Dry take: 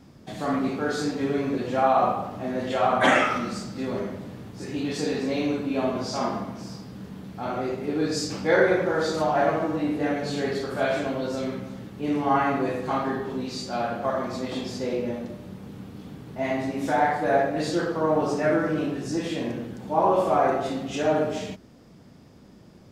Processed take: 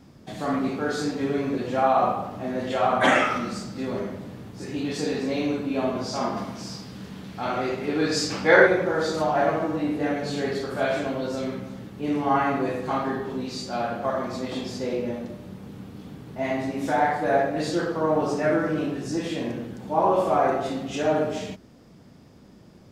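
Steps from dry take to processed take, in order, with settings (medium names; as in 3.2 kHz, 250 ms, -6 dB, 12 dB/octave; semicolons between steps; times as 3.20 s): 6.36–8.66 s: peaking EQ 6 kHz -> 1.5 kHz +7.5 dB 3 oct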